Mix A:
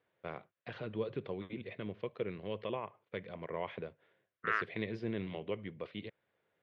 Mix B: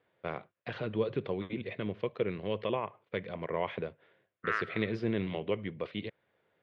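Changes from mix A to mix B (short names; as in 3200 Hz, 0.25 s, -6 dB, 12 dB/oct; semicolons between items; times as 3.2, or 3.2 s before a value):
first voice +6.0 dB; reverb: on, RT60 0.95 s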